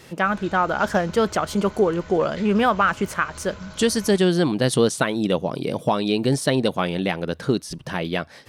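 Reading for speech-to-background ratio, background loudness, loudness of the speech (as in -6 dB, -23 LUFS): 19.5 dB, -41.5 LUFS, -22.0 LUFS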